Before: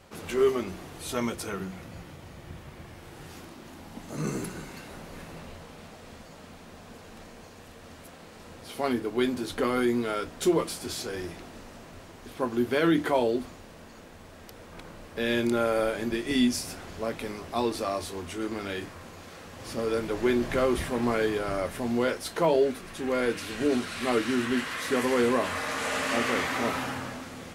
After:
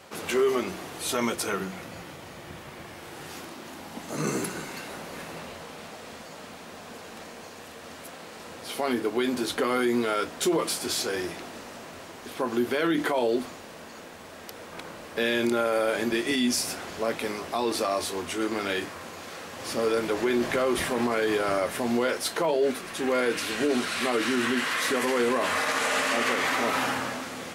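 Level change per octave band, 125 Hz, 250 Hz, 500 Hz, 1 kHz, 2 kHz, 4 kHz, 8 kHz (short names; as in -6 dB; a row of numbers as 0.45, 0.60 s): -3.5, 0.0, +1.0, +3.0, +4.0, +5.0, +6.0 dB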